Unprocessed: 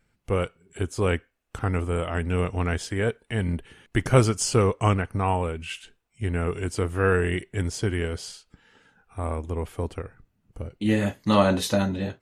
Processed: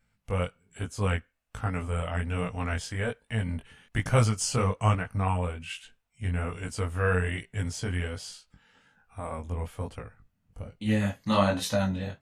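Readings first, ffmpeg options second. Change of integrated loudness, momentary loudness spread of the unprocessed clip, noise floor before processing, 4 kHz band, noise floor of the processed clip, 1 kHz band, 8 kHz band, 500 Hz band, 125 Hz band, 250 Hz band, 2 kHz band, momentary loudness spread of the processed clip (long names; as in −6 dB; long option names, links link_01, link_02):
−4.0 dB, 13 LU, −71 dBFS, −3.0 dB, −74 dBFS, −3.5 dB, −3.0 dB, −6.5 dB, −2.5 dB, −5.0 dB, −3.0 dB, 14 LU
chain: -af "equalizer=frequency=360:width_type=o:width=0.45:gain=-14,flanger=delay=17.5:depth=5.2:speed=1.2"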